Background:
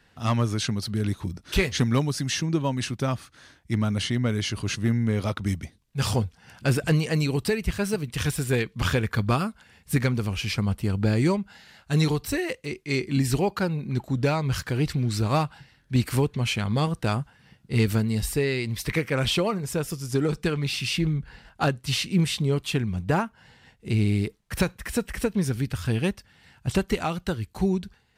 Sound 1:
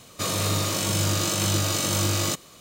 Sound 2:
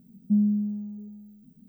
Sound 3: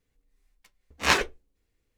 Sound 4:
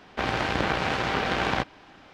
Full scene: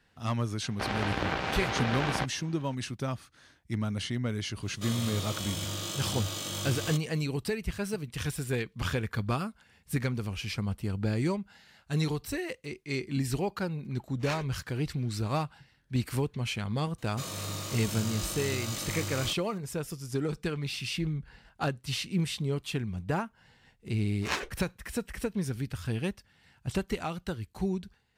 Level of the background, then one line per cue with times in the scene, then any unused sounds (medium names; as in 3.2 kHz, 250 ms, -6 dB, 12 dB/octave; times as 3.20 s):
background -7 dB
0.62 s: add 4 -5.5 dB
4.62 s: add 1 -12 dB + peaking EQ 3.3 kHz +11.5 dB 0.2 oct
13.20 s: add 3 -16.5 dB
16.98 s: add 1 -11.5 dB + peaking EQ 400 Hz -2.5 dB
23.22 s: add 3 -10.5 dB
not used: 2